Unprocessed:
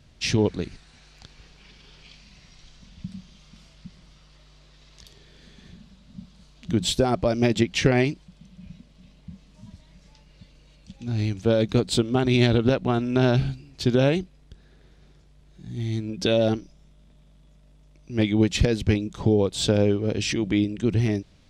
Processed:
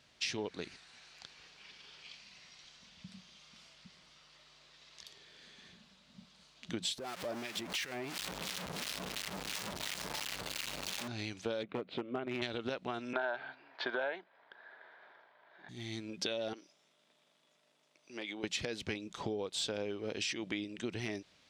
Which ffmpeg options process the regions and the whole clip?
ffmpeg -i in.wav -filter_complex "[0:a]asettb=1/sr,asplit=3[link_01][link_02][link_03];[link_01]atrim=end=6.984[link_04];[link_02]atrim=start=6.98:end=11.08,asetpts=PTS-STARTPTS,afade=type=in:duration=0.004:curve=qsin,afade=type=out:start_time=4.096:duration=0.004:curve=qsin,aeval=exprs='val(0)+0.5*0.0794*sgn(val(0))':channel_layout=same,acompressor=threshold=-25dB:ratio=5:attack=3.2:release=140:knee=1:detection=peak,acrossover=split=1300[link_05][link_06];[link_05]aeval=exprs='val(0)*(1-0.7/2+0.7/2*cos(2*PI*2.9*n/s))':channel_layout=same[link_07];[link_06]aeval=exprs='val(0)*(1-0.7/2-0.7/2*cos(2*PI*2.9*n/s))':channel_layout=same[link_08];[link_07][link_08]amix=inputs=2:normalize=0[link_09];[link_03]atrim=start=11.076[link_10];[link_04][link_09]acrossfade=duration=0.004:curve1=hsin:curve2=qsin[link_11];[link_11][link_10]acrossfade=duration=0.004:curve1=qsin:curve2=hsin,asettb=1/sr,asplit=3[link_12][link_13][link_14];[link_12]atrim=end=11.634[link_15];[link_13]atrim=start=11.63:end=12.42,asetpts=PTS-STARTPTS,afade=type=in:duration=0.004:curve=qsin,afade=type=out:start_time=0.786:duration=0.004:curve=qsin,highpass=110,equalizer=frequency=580:width_type=q:width=4:gain=4,equalizer=frequency=890:width_type=q:width=4:gain=-8,equalizer=frequency=1700:width_type=q:width=4:gain=-7,lowpass=frequency=2300:width=0.5412,lowpass=frequency=2300:width=1.3066,asoftclip=type=hard:threshold=-13.5dB[link_16];[link_14]atrim=start=12.416[link_17];[link_15][link_16]acrossfade=duration=0.004:curve1=hsin:curve2=qsin[link_18];[link_18][link_17]acrossfade=duration=0.004:curve1=qsin:curve2=hsin,asettb=1/sr,asplit=3[link_19][link_20][link_21];[link_19]atrim=end=13.134[link_22];[link_20]atrim=start=13.13:end=15.69,asetpts=PTS-STARTPTS,afade=type=in:duration=0.004:curve=qsin,afade=type=out:start_time=2.556:duration=0.004:curve=qsin,acontrast=52,highpass=490,equalizer=frequency=650:width_type=q:width=4:gain=7,equalizer=frequency=930:width_type=q:width=4:gain=10,equalizer=frequency=1600:width_type=q:width=4:gain=10,equalizer=frequency=2700:width_type=q:width=4:gain=-9,lowpass=frequency=3000:width=0.5412,lowpass=frequency=3000:width=1.3066[link_23];[link_21]atrim=start=15.686[link_24];[link_22][link_23]acrossfade=duration=0.004:curve1=hsin:curve2=qsin[link_25];[link_25][link_24]acrossfade=duration=0.004:curve1=qsin:curve2=hsin,asettb=1/sr,asplit=3[link_26][link_27][link_28];[link_26]atrim=end=16.534[link_29];[link_27]atrim=start=16.53:end=18.44,asetpts=PTS-STARTPTS,afade=type=in:duration=0.004:curve=qsin,afade=type=out:start_time=1.906:duration=0.004:curve=qsin,highpass=290,acompressor=threshold=-30dB:ratio=6:attack=3.2:release=140:knee=1:detection=peak[link_30];[link_28]atrim=start=18.436[link_31];[link_29][link_30]acrossfade=duration=0.004:curve1=hsin:curve2=qsin[link_32];[link_32][link_31]acrossfade=duration=0.004:curve1=qsin:curve2=hsin,highpass=frequency=1100:poles=1,highshelf=frequency=6500:gain=-6.5,acompressor=threshold=-34dB:ratio=6" out.wav

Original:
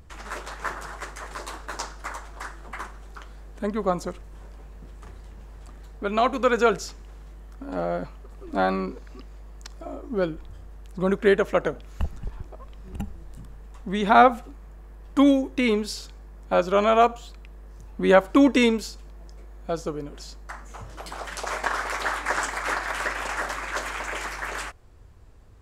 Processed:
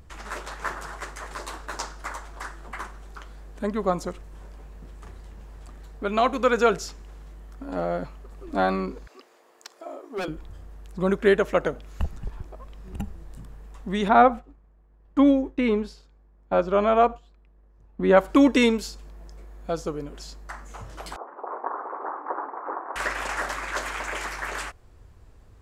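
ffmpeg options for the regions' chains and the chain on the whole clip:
ffmpeg -i in.wav -filter_complex "[0:a]asettb=1/sr,asplit=3[link_01][link_02][link_03];[link_01]atrim=end=9.074[link_04];[link_02]atrim=start=9.07:end=10.28,asetpts=PTS-STARTPTS,afade=type=in:duration=0.004:curve=qsin,afade=type=out:start_time=1.206:duration=0.004:curve=qsin,highpass=frequency=350:width=0.5412,highpass=frequency=350:width=1.3066,aeval=exprs='0.0631*(abs(mod(val(0)/0.0631+3,4)-2)-1)':channel_layout=same[link_05];[link_03]atrim=start=10.276[link_06];[link_04][link_05]acrossfade=duration=0.004:curve1=hsin:curve2=qsin[link_07];[link_07][link_06]acrossfade=duration=0.004:curve1=qsin:curve2=hsin,asettb=1/sr,asplit=3[link_08][link_09][link_10];[link_08]atrim=end=14.084[link_11];[link_09]atrim=start=14.08:end=18.17,asetpts=PTS-STARTPTS,afade=type=in:duration=0.004:curve=qsin,afade=type=out:start_time=4.086:duration=0.004:curve=qsin,lowpass=frequency=1500:poles=1,agate=range=-33dB:threshold=-35dB:ratio=3:release=100:detection=peak[link_12];[link_10]atrim=start=18.166[link_13];[link_11][link_12]acrossfade=duration=0.004:curve1=hsin:curve2=qsin[link_14];[link_14][link_13]acrossfade=duration=0.004:curve1=qsin:curve2=hsin,asettb=1/sr,asplit=3[link_15][link_16][link_17];[link_15]atrim=end=21.164[link_18];[link_16]atrim=start=21.16:end=22.96,asetpts=PTS-STARTPTS,afade=type=in:duration=0.004:curve=qsin,afade=type=out:start_time=1.796:duration=0.004:curve=qsin,asuperpass=centerf=570:order=8:qfactor=0.66,equalizer=frequency=620:width_type=o:width=0.22:gain=-6[link_19];[link_17]atrim=start=22.956[link_20];[link_18][link_19]acrossfade=duration=0.004:curve1=hsin:curve2=qsin[link_21];[link_21][link_20]acrossfade=duration=0.004:curve1=qsin:curve2=hsin" out.wav

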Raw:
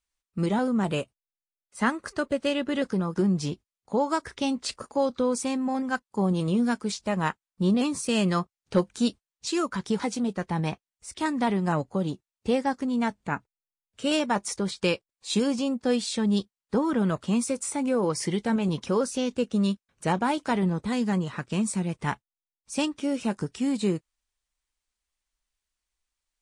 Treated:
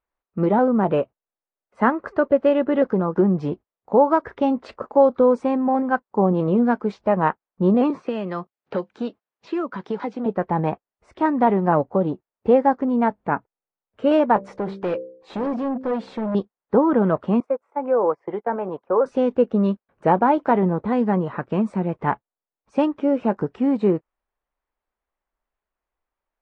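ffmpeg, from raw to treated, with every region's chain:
ffmpeg -i in.wav -filter_complex "[0:a]asettb=1/sr,asplit=3[link_01][link_02][link_03];[link_01]atrim=end=7.904[link_04];[link_02]atrim=start=7.9:end=10.26,asetpts=PTS-STARTPTS,afade=type=in:duration=0.004:curve=qsin,afade=type=out:start_time=2.356:duration=0.004:curve=qsin,highshelf=frequency=2300:gain=10.5,acrossover=split=390|3000[link_05][link_06][link_07];[link_05]acompressor=threshold=-34dB:ratio=4[link_08];[link_06]acompressor=threshold=-38dB:ratio=4[link_09];[link_07]acompressor=threshold=-37dB:ratio=4[link_10];[link_08][link_09][link_10]amix=inputs=3:normalize=0,highpass=140,lowpass=5200[link_11];[link_03]atrim=start=10.256[link_12];[link_04][link_11]acrossfade=duration=0.004:curve1=hsin:curve2=qsin[link_13];[link_13][link_12]acrossfade=duration=0.004:curve1=qsin:curve2=hsin,asettb=1/sr,asplit=3[link_14][link_15][link_16];[link_14]atrim=end=14.364[link_17];[link_15]atrim=start=14.36:end=16.35,asetpts=PTS-STARTPTS,afade=type=in:duration=0.004:curve=qsin,afade=type=out:start_time=1.986:duration=0.004:curve=qsin,bandreject=frequency=65.09:width_type=h:width=4,bandreject=frequency=130.18:width_type=h:width=4,bandreject=frequency=195.27:width_type=h:width=4,bandreject=frequency=260.36:width_type=h:width=4,bandreject=frequency=325.45:width_type=h:width=4,bandreject=frequency=390.54:width_type=h:width=4,bandreject=frequency=455.63:width_type=h:width=4,bandreject=frequency=520.72:width_type=h:width=4,bandreject=frequency=585.81:width_type=h:width=4,volume=29dB,asoftclip=hard,volume=-29dB[link_18];[link_16]atrim=start=16.346[link_19];[link_17][link_18]acrossfade=duration=0.004:curve1=hsin:curve2=qsin[link_20];[link_20][link_19]acrossfade=duration=0.004:curve1=qsin:curve2=hsin,asettb=1/sr,asplit=3[link_21][link_22][link_23];[link_21]atrim=end=17.404[link_24];[link_22]atrim=start=17.4:end=19.06,asetpts=PTS-STARTPTS,afade=type=in:duration=0.004:curve=qsin,afade=type=out:start_time=1.656:duration=0.004:curve=qsin,agate=range=-19dB:threshold=-30dB:ratio=16:release=100:detection=peak,acrossover=split=410 2000:gain=0.158 1 0.158[link_25][link_26][link_27];[link_25][link_26][link_27]amix=inputs=3:normalize=0[link_28];[link_23]atrim=start=19.056[link_29];[link_24][link_28]acrossfade=duration=0.004:curve1=hsin:curve2=qsin[link_30];[link_30][link_29]acrossfade=duration=0.004:curve1=qsin:curve2=hsin,lowpass=1800,equalizer=frequency=610:width=0.43:gain=12,volume=-1dB" out.wav

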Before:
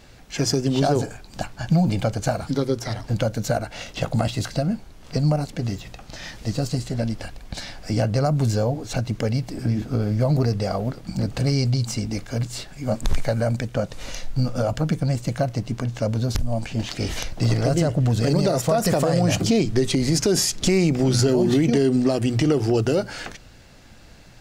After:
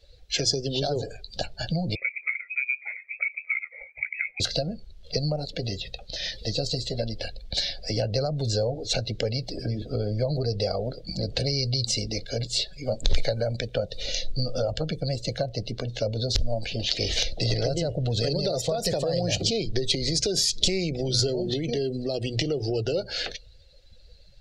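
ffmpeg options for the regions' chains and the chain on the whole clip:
ffmpeg -i in.wav -filter_complex "[0:a]asettb=1/sr,asplit=3[link_01][link_02][link_03];[link_01]atrim=end=1.954[link_04];[link_02]atrim=start=1.95:end=4.4,asetpts=PTS-STARTPTS,afade=type=in:duration=0.004:curve=qsin,afade=type=out:start_time=2.446:duration=0.004:curve=qsin,highpass=frequency=390:width=0.5412,highpass=frequency=390:width=1.3066,equalizer=frequency=1700:width=0.75:gain=-7,lowpass=frequency=2400:width_type=q:width=0.5098,lowpass=frequency=2400:width_type=q:width=0.6013,lowpass=frequency=2400:width_type=q:width=0.9,lowpass=frequency=2400:width_type=q:width=2.563,afreqshift=-2800[link_05];[link_03]atrim=start=4.396[link_06];[link_04][link_05]acrossfade=duration=0.004:curve1=hsin:curve2=qsin[link_07];[link_07][link_06]acrossfade=duration=0.004:curve1=qsin:curve2=hsin,acrossover=split=150[link_08][link_09];[link_09]acompressor=threshold=-26dB:ratio=5[link_10];[link_08][link_10]amix=inputs=2:normalize=0,equalizer=frequency=125:width_type=o:width=1:gain=-5,equalizer=frequency=250:width_type=o:width=1:gain=-8,equalizer=frequency=500:width_type=o:width=1:gain=8,equalizer=frequency=1000:width_type=o:width=1:gain=-8,equalizer=frequency=4000:width_type=o:width=1:gain=12,afftdn=noise_reduction=19:noise_floor=-39" out.wav

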